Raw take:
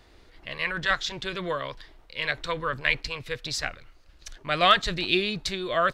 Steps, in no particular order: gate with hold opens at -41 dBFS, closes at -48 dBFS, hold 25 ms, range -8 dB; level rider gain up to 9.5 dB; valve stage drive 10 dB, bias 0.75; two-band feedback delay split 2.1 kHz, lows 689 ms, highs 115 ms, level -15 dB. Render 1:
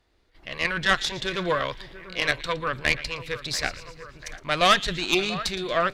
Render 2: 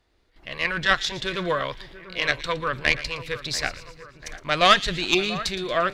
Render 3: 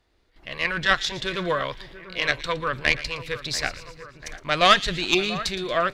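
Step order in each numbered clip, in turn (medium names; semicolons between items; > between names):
two-band feedback delay > level rider > gate with hold > valve stage; gate with hold > valve stage > level rider > two-band feedback delay; gate with hold > valve stage > two-band feedback delay > level rider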